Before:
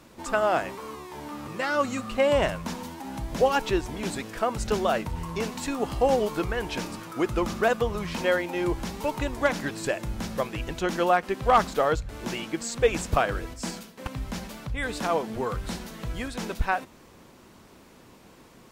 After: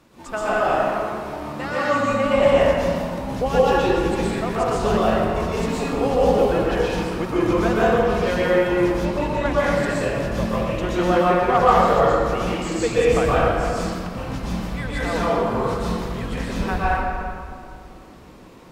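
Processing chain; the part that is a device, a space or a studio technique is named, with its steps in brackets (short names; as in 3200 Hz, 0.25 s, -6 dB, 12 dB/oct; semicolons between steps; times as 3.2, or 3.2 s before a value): swimming-pool hall (reverb RT60 2.3 s, pre-delay 0.113 s, DRR -8.5 dB; high shelf 5500 Hz -4.5 dB); 9.05–9.58 high shelf 9500 Hz -9.5 dB; gain -3 dB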